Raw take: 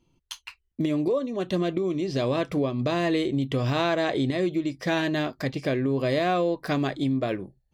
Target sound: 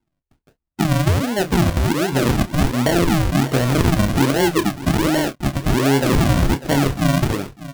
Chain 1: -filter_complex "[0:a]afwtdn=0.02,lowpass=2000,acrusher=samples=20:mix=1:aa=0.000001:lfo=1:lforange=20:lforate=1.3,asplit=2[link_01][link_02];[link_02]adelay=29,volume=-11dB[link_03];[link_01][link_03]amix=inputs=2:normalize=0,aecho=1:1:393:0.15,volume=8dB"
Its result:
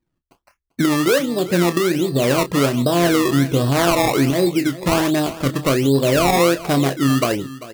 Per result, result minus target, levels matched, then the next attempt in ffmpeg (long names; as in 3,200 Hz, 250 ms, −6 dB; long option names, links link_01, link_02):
sample-and-hold swept by an LFO: distortion −18 dB; echo 204 ms early
-filter_complex "[0:a]afwtdn=0.02,lowpass=2000,acrusher=samples=70:mix=1:aa=0.000001:lfo=1:lforange=70:lforate=1.3,asplit=2[link_01][link_02];[link_02]adelay=29,volume=-11dB[link_03];[link_01][link_03]amix=inputs=2:normalize=0,aecho=1:1:393:0.15,volume=8dB"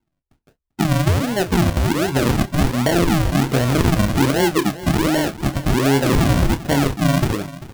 echo 204 ms early
-filter_complex "[0:a]afwtdn=0.02,lowpass=2000,acrusher=samples=70:mix=1:aa=0.000001:lfo=1:lforange=70:lforate=1.3,asplit=2[link_01][link_02];[link_02]adelay=29,volume=-11dB[link_03];[link_01][link_03]amix=inputs=2:normalize=0,aecho=1:1:597:0.15,volume=8dB"